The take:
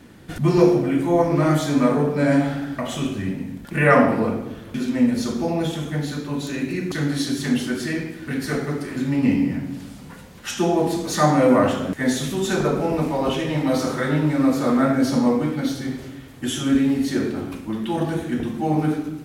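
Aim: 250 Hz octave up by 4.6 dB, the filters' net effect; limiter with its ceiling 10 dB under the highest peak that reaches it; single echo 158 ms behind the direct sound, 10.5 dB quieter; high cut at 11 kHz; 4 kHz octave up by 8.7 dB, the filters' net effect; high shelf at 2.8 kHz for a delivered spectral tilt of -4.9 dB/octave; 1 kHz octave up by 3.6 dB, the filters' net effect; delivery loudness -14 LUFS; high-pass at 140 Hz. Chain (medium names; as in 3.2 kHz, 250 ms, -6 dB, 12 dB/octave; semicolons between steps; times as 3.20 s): high-pass 140 Hz; low-pass 11 kHz; peaking EQ 250 Hz +5.5 dB; peaking EQ 1 kHz +3.5 dB; treble shelf 2.8 kHz +4.5 dB; peaking EQ 4 kHz +7 dB; peak limiter -10 dBFS; delay 158 ms -10.5 dB; trim +5.5 dB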